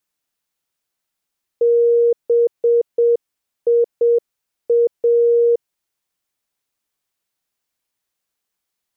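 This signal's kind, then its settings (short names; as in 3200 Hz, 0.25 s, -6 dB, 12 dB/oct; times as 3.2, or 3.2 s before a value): Morse "BIA" 7 wpm 471 Hz -10.5 dBFS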